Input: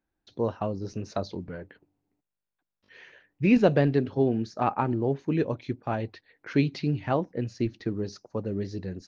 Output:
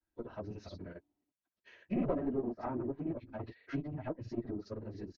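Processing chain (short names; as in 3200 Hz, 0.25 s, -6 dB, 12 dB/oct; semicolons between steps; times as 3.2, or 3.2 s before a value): one diode to ground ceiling -24 dBFS; grains, pitch spread up and down by 0 st; comb 3.1 ms, depth 33%; treble ducked by the level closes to 1000 Hz, closed at -29.5 dBFS; plain phase-vocoder stretch 0.57×; gain -2.5 dB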